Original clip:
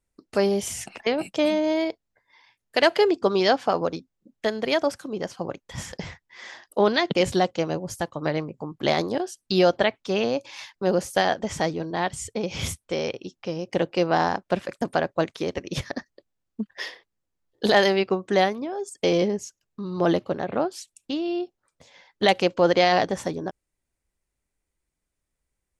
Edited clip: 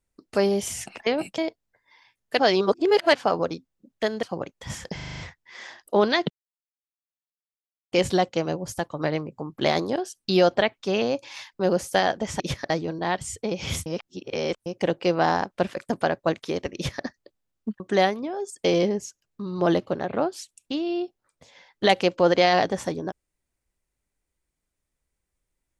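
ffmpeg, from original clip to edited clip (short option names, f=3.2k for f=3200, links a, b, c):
-filter_complex "[0:a]asplit=17[a][b][c][d][e][f][g][h][i][j][k][l][m][n][o][p][q];[a]atrim=end=1.382[r];[b]atrim=start=1.798:end=2.812[s];[c]atrim=start=2.808:end=3.572,asetpts=PTS-STARTPTS,areverse[t];[d]atrim=start=3.568:end=4.652[u];[e]atrim=start=5.308:end=6.072[v];[f]atrim=start=6.028:end=6.072[w];[g]atrim=start=6.028:end=6.072[x];[h]atrim=start=6.028:end=6.072[y];[i]atrim=start=6.028:end=6.072[z];[j]atrim=start=6.028:end=6.072[aa];[k]atrim=start=6.028:end=7.14,asetpts=PTS-STARTPTS,afade=t=out:st=1.108:d=0.004:c=hsin,apad=pad_dur=1.62[ab];[l]atrim=start=7.14:end=11.622,asetpts=PTS-STARTPTS,afade=t=in:d=0.004:c=hsin[ac];[m]atrim=start=15.668:end=15.972[ad];[n]atrim=start=11.618:end=12.782[ae];[o]atrim=start=12.778:end=13.582,asetpts=PTS-STARTPTS,areverse[af];[p]atrim=start=13.578:end=16.722[ag];[q]atrim=start=18.188[ah];[r][s]acrossfade=d=0.004:c1=hsin:c2=hsin[ai];[ai][t]acrossfade=d=0.004:c1=hsin:c2=hsin[aj];[aj][u]acrossfade=d=0.004:c1=hsin:c2=hsin[ak];[ak][v]acrossfade=d=0.004:c1=hsin:c2=hsin[al];[al][w]acrossfade=d=0.004:c1=hsin:c2=hsin[am];[am][x]acrossfade=d=0.004:c1=hsin:c2=hsin[an];[an][y]acrossfade=d=0.004:c1=hsin:c2=hsin[ao];[ao][z]acrossfade=d=0.004:c1=hsin:c2=hsin[ap];[ap][aa]acrossfade=d=0.004:c1=hsin:c2=hsin[aq];[ab][ac]concat=n=2:v=0:a=1[ar];[aq][ar]acrossfade=d=0.004:c1=hsin:c2=hsin[as];[as][ad]acrossfade=d=0.004:c1=hsin:c2=hsin[at];[at][ae]acrossfade=d=0.004:c1=hsin:c2=hsin[au];[au][af]acrossfade=d=0.004:c1=hsin:c2=hsin[av];[av][ag]acrossfade=d=0.004:c1=hsin:c2=hsin[aw];[aw][ah]acrossfade=d=0.004:c1=hsin:c2=hsin"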